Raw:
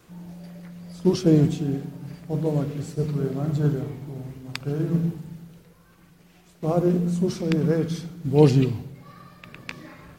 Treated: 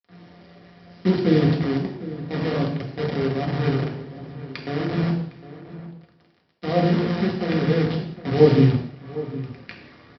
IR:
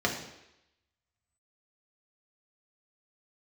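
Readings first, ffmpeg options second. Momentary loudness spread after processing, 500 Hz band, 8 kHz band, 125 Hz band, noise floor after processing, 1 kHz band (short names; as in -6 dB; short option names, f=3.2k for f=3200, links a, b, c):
19 LU, +2.5 dB, under -10 dB, +0.5 dB, -58 dBFS, +6.0 dB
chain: -filter_complex "[0:a]aresample=11025,acrusher=bits=5:dc=4:mix=0:aa=0.000001,aresample=44100,asplit=2[a][b];[b]adelay=758,volume=-15dB,highshelf=f=4k:g=-17.1[c];[a][c]amix=inputs=2:normalize=0[d];[1:a]atrim=start_sample=2205,afade=t=out:st=0.25:d=0.01,atrim=end_sample=11466[e];[d][e]afir=irnorm=-1:irlink=0,volume=-11dB"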